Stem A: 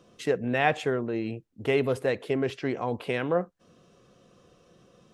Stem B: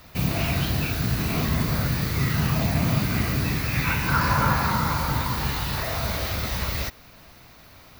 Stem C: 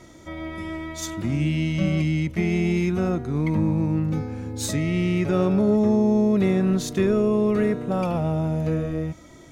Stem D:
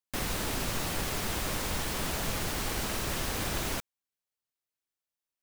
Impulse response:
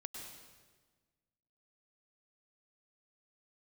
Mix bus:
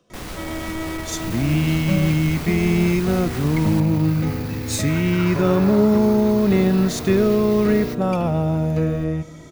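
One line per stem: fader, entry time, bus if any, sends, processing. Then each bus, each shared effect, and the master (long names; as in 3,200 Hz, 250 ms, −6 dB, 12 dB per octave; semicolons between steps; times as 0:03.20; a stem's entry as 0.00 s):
−15.0 dB, 0.00 s, no send, wrap-around overflow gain 20.5 dB; multiband upward and downward compressor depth 40%
−5.5 dB, 1.05 s, no send, soft clipping −21.5 dBFS, distortion −12 dB
+2.5 dB, 0.10 s, send −13 dB, no processing
−6.0 dB, 0.00 s, no send, each half-wave held at its own peak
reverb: on, RT60 1.4 s, pre-delay 94 ms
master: no processing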